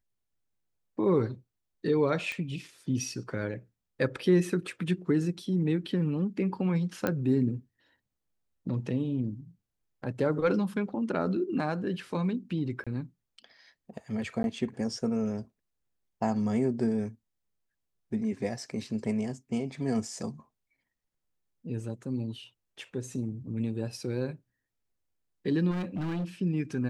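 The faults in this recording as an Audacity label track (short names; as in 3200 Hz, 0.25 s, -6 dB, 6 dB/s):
2.320000	2.320000	pop -23 dBFS
7.070000	7.070000	pop -15 dBFS
12.840000	12.870000	gap 26 ms
14.430000	14.440000	gap 11 ms
25.700000	26.250000	clipped -29 dBFS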